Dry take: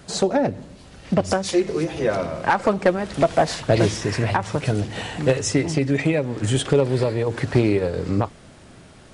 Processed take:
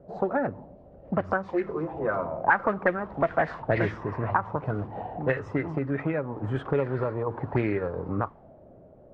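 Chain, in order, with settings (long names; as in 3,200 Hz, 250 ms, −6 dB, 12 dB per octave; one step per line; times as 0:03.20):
envelope-controlled low-pass 560–1,900 Hz up, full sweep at −13 dBFS
level −8.5 dB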